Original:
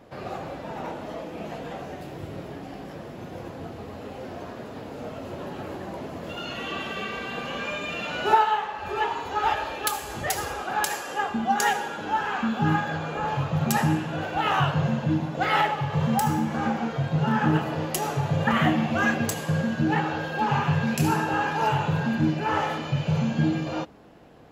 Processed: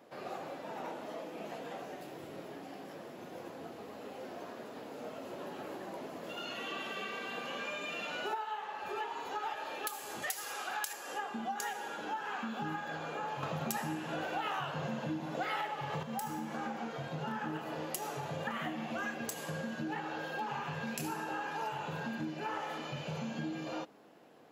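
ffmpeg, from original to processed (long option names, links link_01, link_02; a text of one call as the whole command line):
ffmpeg -i in.wav -filter_complex "[0:a]asettb=1/sr,asplit=3[link_01][link_02][link_03];[link_01]atrim=end=10.224[link_04];[link_02]atrim=start=10.22:end=10.93,asetpts=PTS-STARTPTS,afade=type=in:duration=0.004:curve=qsin,afade=type=out:start_time=0.706:duration=0.004:curve=qsin,tiltshelf=frequency=970:gain=-6.5[link_05];[link_03]atrim=start=10.926[link_06];[link_04][link_05]acrossfade=duration=0.004:curve1=hsin:curve2=qsin[link_07];[link_07][link_06]acrossfade=duration=0.004:curve1=qsin:curve2=hsin,asplit=3[link_08][link_09][link_10];[link_08]atrim=end=13.432[link_11];[link_09]atrim=start=13.428:end=16.032,asetpts=PTS-STARTPTS,volume=10dB[link_12];[link_10]atrim=start=16.028[link_13];[link_11][link_12]acrossfade=duration=0.004:curve1=hsin:curve2=hsin[link_14];[link_14][link_13]acrossfade=duration=0.004:curve1=hsin:curve2=hsin,highpass=240,highshelf=frequency=8000:gain=6,acompressor=threshold=-28dB:ratio=6,volume=-7dB" out.wav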